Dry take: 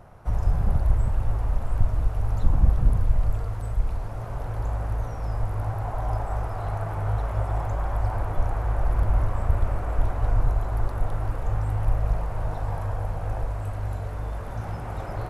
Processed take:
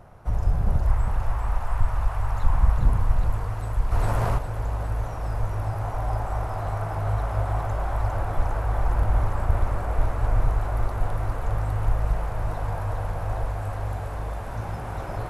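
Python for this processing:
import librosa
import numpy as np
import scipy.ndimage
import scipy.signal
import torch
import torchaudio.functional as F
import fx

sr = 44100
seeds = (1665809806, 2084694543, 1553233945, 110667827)

p1 = fx.graphic_eq(x, sr, hz=(125, 250, 500, 1000, 2000), db=(-3, -8, -4, 7, 4), at=(0.87, 2.78))
p2 = p1 + fx.echo_thinned(p1, sr, ms=406, feedback_pct=82, hz=410.0, wet_db=-4.0, dry=0)
y = fx.env_flatten(p2, sr, amount_pct=50, at=(3.91, 4.37), fade=0.02)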